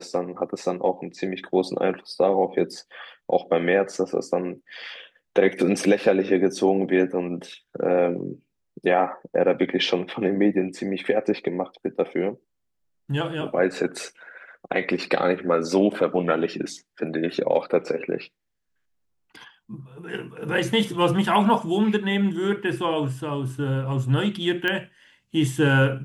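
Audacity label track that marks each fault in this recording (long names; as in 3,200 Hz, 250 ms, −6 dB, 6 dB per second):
24.680000	24.680000	click −13 dBFS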